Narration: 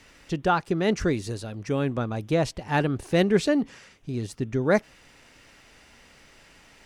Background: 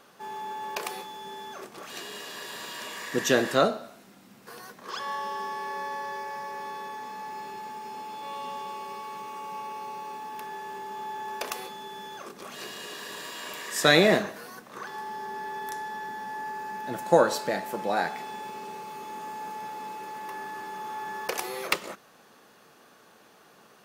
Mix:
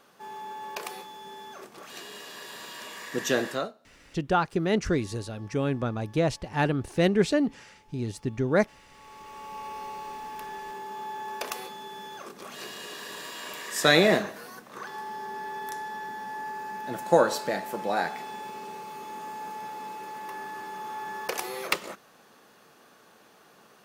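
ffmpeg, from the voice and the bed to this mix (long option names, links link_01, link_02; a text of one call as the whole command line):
ffmpeg -i stem1.wav -i stem2.wav -filter_complex "[0:a]adelay=3850,volume=-1.5dB[link_01];[1:a]volume=19dB,afade=type=out:start_time=3.44:duration=0.29:silence=0.105925,afade=type=in:start_time=8.89:duration=0.86:silence=0.0794328[link_02];[link_01][link_02]amix=inputs=2:normalize=0" out.wav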